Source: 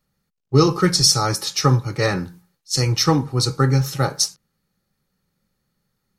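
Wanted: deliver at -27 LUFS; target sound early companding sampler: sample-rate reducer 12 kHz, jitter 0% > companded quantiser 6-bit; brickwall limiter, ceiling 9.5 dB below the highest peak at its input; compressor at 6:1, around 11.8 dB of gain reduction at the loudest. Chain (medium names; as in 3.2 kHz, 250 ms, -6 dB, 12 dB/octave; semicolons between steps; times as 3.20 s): compression 6:1, threshold -23 dBFS; peak limiter -20 dBFS; sample-rate reducer 12 kHz, jitter 0%; companded quantiser 6-bit; trim +3.5 dB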